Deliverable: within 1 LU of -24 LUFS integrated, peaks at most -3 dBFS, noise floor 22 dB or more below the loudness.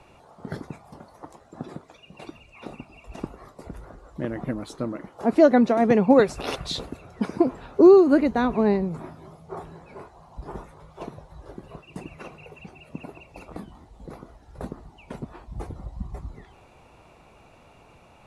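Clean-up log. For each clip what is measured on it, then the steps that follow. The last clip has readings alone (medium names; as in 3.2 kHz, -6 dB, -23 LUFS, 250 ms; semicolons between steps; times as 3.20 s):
loudness -20.5 LUFS; peak level -4.5 dBFS; loudness target -24.0 LUFS
-> trim -3.5 dB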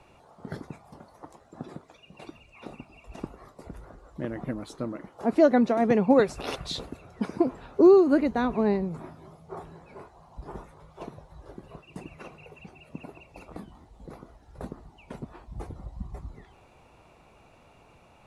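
loudness -24.0 LUFS; peak level -8.0 dBFS; noise floor -57 dBFS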